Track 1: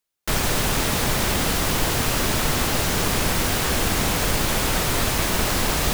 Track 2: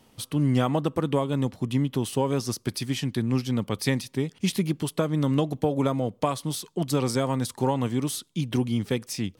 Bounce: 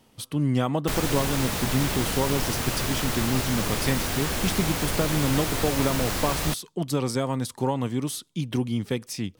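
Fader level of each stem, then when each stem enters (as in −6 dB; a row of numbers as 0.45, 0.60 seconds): −6.0, −1.0 decibels; 0.60, 0.00 seconds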